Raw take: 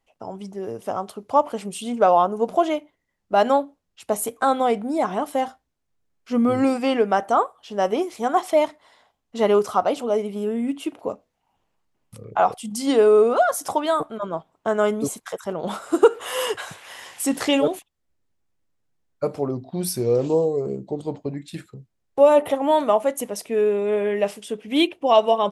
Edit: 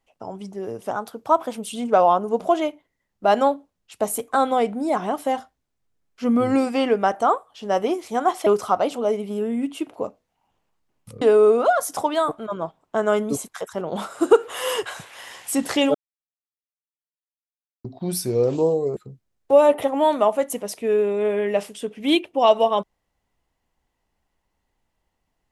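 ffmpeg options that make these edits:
-filter_complex "[0:a]asplit=8[s0][s1][s2][s3][s4][s5][s6][s7];[s0]atrim=end=0.914[s8];[s1]atrim=start=0.91:end=1.77,asetpts=PTS-STARTPTS,asetrate=48951,aresample=44100[s9];[s2]atrim=start=1.766:end=8.552[s10];[s3]atrim=start=9.518:end=12.272[s11];[s4]atrim=start=12.928:end=17.66,asetpts=PTS-STARTPTS,afade=t=out:st=4.728:d=0.004:c=hsin[s12];[s5]atrim=start=17.66:end=19.56,asetpts=PTS-STARTPTS,volume=0[s13];[s6]atrim=start=19.56:end=20.682,asetpts=PTS-STARTPTS,afade=t=in:d=0.004:c=hsin[s14];[s7]atrim=start=21.638[s15];[s8][s9]acrossfade=d=0.004:c1=hsin:c2=hsin[s16];[s16][s10]acrossfade=d=0.004:c1=hsin:c2=hsin[s17];[s17][s11]acrossfade=d=0.004:c1=hsin:c2=hsin[s18];[s12][s13][s14]concat=n=3:v=0:a=1[s19];[s18][s19]acrossfade=d=0.004:c1=hsin:c2=hsin[s20];[s20][s15]acrossfade=d=0.004:c1=hsin:c2=hsin"

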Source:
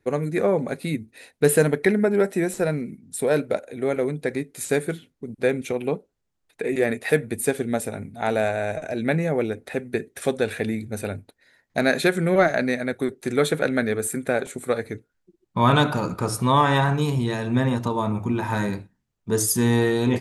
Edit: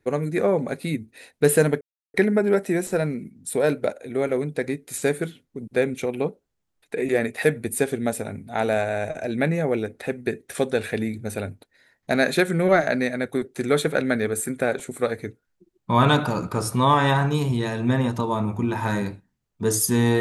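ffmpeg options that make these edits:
-filter_complex "[0:a]asplit=2[s0][s1];[s0]atrim=end=1.81,asetpts=PTS-STARTPTS,afade=t=out:st=1.806:d=0.004:c=hsin,apad=pad_dur=0.33[s2];[s1]atrim=start=1.81,asetpts=PTS-STARTPTS,afade=t=in:d=0.004:c=hsin[s3];[s2][s3]concat=n=2:v=0:a=1"

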